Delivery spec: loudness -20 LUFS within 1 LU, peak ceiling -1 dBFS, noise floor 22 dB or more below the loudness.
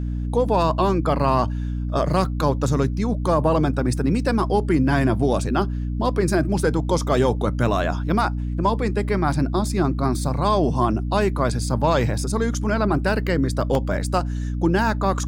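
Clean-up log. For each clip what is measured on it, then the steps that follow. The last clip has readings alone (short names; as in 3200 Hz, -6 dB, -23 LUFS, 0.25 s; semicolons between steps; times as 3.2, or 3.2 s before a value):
dropouts 1; longest dropout 1.4 ms; hum 60 Hz; harmonics up to 300 Hz; hum level -23 dBFS; loudness -21.5 LUFS; peak -5.5 dBFS; loudness target -20.0 LUFS
-> interpolate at 13.75, 1.4 ms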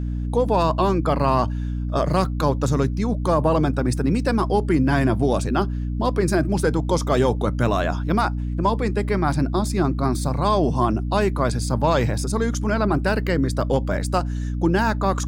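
dropouts 0; hum 60 Hz; harmonics up to 300 Hz; hum level -23 dBFS
-> de-hum 60 Hz, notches 5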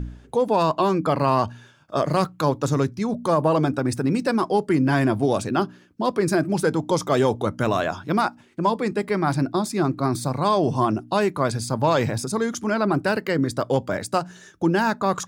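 hum none; loudness -23.0 LUFS; peak -7.0 dBFS; loudness target -20.0 LUFS
-> gain +3 dB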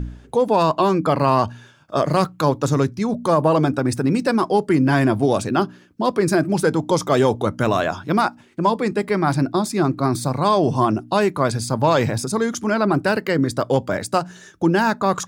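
loudness -20.0 LUFS; peak -4.0 dBFS; noise floor -49 dBFS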